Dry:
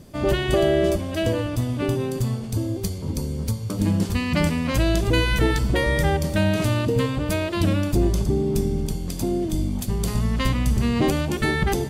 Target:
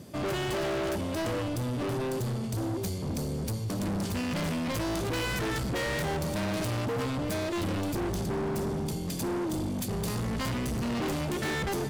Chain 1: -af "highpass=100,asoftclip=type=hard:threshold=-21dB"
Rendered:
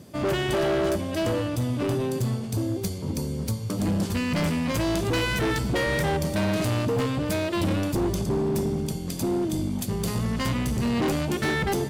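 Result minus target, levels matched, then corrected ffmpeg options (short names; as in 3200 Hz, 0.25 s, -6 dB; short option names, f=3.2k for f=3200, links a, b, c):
hard clip: distortion -5 dB
-af "highpass=100,asoftclip=type=hard:threshold=-29dB"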